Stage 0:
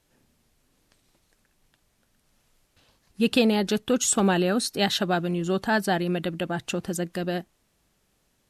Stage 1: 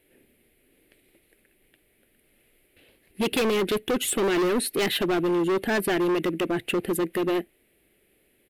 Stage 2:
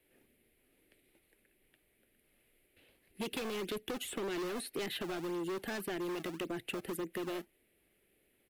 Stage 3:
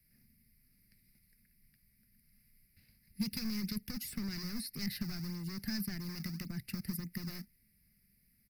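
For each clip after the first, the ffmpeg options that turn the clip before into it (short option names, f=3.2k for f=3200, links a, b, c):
-af "firequalizer=gain_entry='entry(160,0);entry(360,14);entry(1000,-7);entry(2100,13);entry(6000,-14);entry(10000,10)':delay=0.05:min_phase=1,volume=19dB,asoftclip=hard,volume=-19dB,volume=-2dB"
-filter_complex "[0:a]acrossover=split=340|3700[a][b][c];[a]acompressor=threshold=-34dB:ratio=4[d];[b]acompressor=threshold=-32dB:ratio=4[e];[c]acompressor=threshold=-38dB:ratio=4[f];[d][e][f]amix=inputs=3:normalize=0,acrossover=split=310|1600[g][h][i];[g]acrusher=samples=26:mix=1:aa=0.000001:lfo=1:lforange=41.6:lforate=1.8[j];[j][h][i]amix=inputs=3:normalize=0,volume=-8dB"
-af "firequalizer=gain_entry='entry(210,0);entry(310,-26);entry(460,-29);entry(2100,-10);entry(3200,-28);entry(4900,6);entry(7000,-16);entry(14000,1)':delay=0.05:min_phase=1,volume=9dB"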